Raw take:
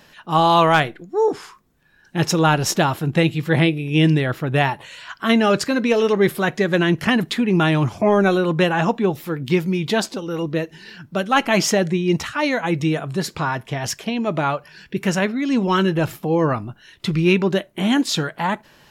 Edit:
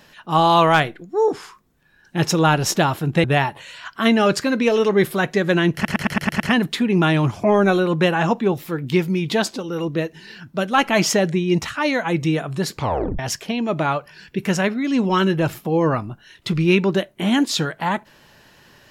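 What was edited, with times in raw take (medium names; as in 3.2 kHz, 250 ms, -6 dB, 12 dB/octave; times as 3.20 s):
3.24–4.48 s: delete
6.98 s: stutter 0.11 s, 7 plays
13.35 s: tape stop 0.42 s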